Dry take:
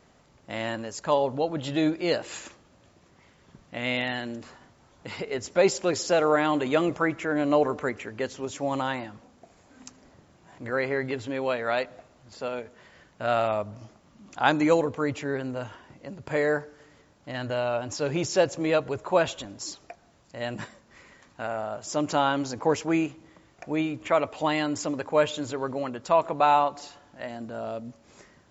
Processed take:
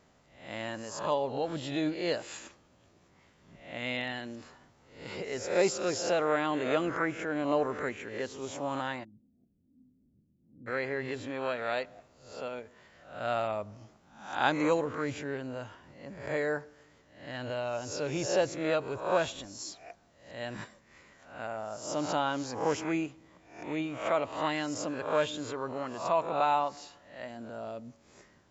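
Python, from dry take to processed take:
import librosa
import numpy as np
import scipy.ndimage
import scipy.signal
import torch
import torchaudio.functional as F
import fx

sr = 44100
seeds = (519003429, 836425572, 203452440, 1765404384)

y = fx.spec_swells(x, sr, rise_s=0.54)
y = fx.ladder_lowpass(y, sr, hz=290.0, resonance_pct=40, at=(9.03, 10.66), fade=0.02)
y = y * librosa.db_to_amplitude(-7.0)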